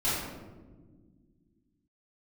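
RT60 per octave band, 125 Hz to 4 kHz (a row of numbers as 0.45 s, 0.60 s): 2.7 s, 2.9 s, 2.0 s, 1.1 s, 0.85 s, 0.65 s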